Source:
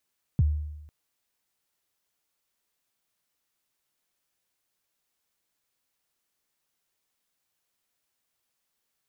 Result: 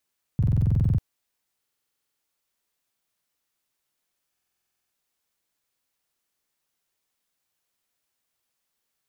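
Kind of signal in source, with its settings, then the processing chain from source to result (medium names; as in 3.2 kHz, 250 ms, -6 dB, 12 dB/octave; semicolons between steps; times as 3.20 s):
kick drum length 0.50 s, from 170 Hz, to 75 Hz, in 30 ms, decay 0.97 s, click off, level -16 dB
buffer glitch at 0.38/1.59/4.31 s, samples 2048, times 12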